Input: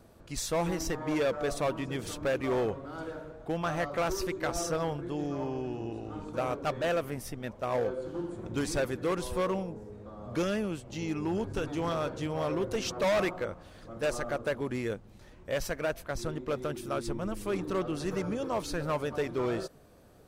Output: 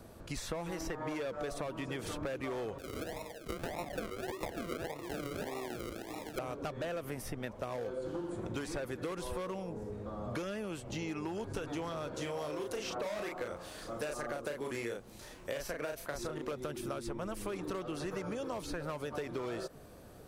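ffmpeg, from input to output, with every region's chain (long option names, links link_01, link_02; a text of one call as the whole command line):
ffmpeg -i in.wav -filter_complex "[0:a]asettb=1/sr,asplit=3[link_01][link_02][link_03];[link_01]atrim=end=2.784[link_04];[link_02]atrim=start=2.78:end=6.39,asetpts=PTS-STARTPTS,afade=type=in:duration=0.004:curve=qsin,afade=type=out:start_time=3.606:duration=0.004:curve=qsin,highpass=730,aemphasis=mode=reproduction:type=riaa,acrusher=samples=40:mix=1:aa=0.000001:lfo=1:lforange=24:lforate=1.7[link_05];[link_03]atrim=start=6.386[link_06];[link_04][link_05]acrossfade=duration=0.004:curve1=hsin:curve2=qsin[link_07];[link_07][link_06]acrossfade=duration=0.004:curve1=qsin:curve2=hsin,asettb=1/sr,asplit=3[link_08][link_09][link_10];[link_08]atrim=end=12.144[link_11];[link_09]atrim=start=12.14:end=16.51,asetpts=PTS-STARTPTS,afade=type=in:duration=0.004:curve=qsin,afade=type=out:start_time=4.366:duration=0.004:curve=qsin,bass=frequency=250:gain=-9,treble=frequency=4000:gain=7,asplit=2[link_12][link_13];[link_13]adelay=34,volume=-3.5dB[link_14];[link_12][link_14]amix=inputs=2:normalize=0,atrim=end_sample=192717[link_15];[link_10]atrim=start=16.506[link_16];[link_11][link_15]acrossfade=duration=0.004:curve1=hsin:curve2=qsin[link_17];[link_17][link_16]acrossfade=duration=0.004:curve1=qsin:curve2=hsin,acrossover=split=410|2800[link_18][link_19][link_20];[link_18]acompressor=threshold=-41dB:ratio=4[link_21];[link_19]acompressor=threshold=-37dB:ratio=4[link_22];[link_20]acompressor=threshold=-51dB:ratio=4[link_23];[link_21][link_22][link_23]amix=inputs=3:normalize=0,equalizer=frequency=11000:width_type=o:width=0.66:gain=2.5,acompressor=threshold=-39dB:ratio=6,volume=4dB" out.wav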